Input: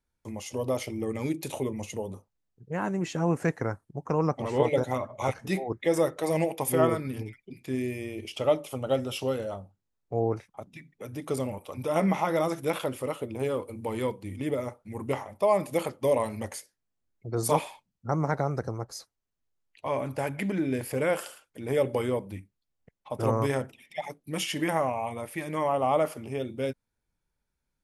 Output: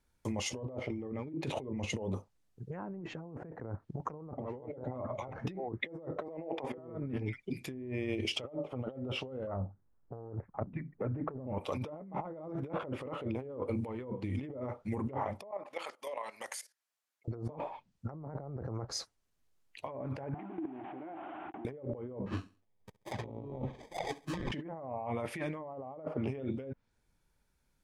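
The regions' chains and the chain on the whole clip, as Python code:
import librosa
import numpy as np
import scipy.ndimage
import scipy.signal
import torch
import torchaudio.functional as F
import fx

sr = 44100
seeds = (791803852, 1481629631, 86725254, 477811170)

y = fx.chain(x, sr, fx.highpass(hz=310.0, slope=12),
    fx.air_absorb(metres=53.0),
    fx.band_squash(depth_pct=70), at=(6.28, 6.78))
y = fx.chain(y, sr, fx.self_delay(depth_ms=0.3),
    fx.lowpass(hz=1600.0, slope=24),
    fx.low_shelf(hz=170.0, db=6.0), at=(9.47, 11.47))
y = fx.chain(y, sr, fx.highpass(hz=890.0, slope=12),
    fx.level_steps(step_db=16), at=(15.51, 17.28))
y = fx.chain(y, sr, fx.delta_mod(bps=16000, step_db=-27.0),
    fx.double_bandpass(hz=490.0, octaves=1.2),
    fx.level_steps(step_db=17), at=(20.34, 21.65))
y = fx.chain(y, sr, fx.sample_hold(seeds[0], rate_hz=1400.0, jitter_pct=0),
    fx.env_flanger(rest_ms=11.2, full_db=-25.5),
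    fx.echo_feedback(ms=67, feedback_pct=33, wet_db=-20), at=(22.26, 24.52))
y = fx.env_lowpass_down(y, sr, base_hz=760.0, full_db=-25.0)
y = fx.over_compress(y, sr, threshold_db=-39.0, ratio=-1.0)
y = y * 10.0 ** (-1.0 / 20.0)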